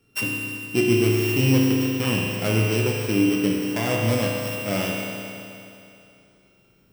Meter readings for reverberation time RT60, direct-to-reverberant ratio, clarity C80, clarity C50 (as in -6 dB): 2.7 s, -2.5 dB, 1.0 dB, 0.0 dB